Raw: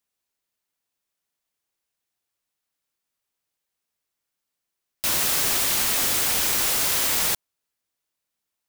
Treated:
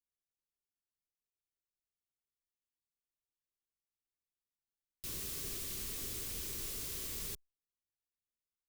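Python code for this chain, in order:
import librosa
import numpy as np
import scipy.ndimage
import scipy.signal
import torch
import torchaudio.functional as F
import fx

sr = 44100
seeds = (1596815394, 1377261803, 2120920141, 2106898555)

y = fx.tone_stack(x, sr, knobs='10-0-1')
y = fx.small_body(y, sr, hz=(400.0, 1100.0), ring_ms=25, db=10)
y = y * 10.0 ** (1.0 / 20.0)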